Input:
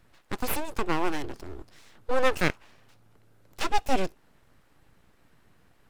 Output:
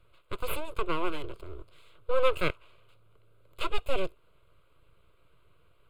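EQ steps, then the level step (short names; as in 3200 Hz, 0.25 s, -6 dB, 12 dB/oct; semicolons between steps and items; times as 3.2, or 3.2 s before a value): high shelf 11000 Hz -11.5 dB; fixed phaser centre 1200 Hz, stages 8; 0.0 dB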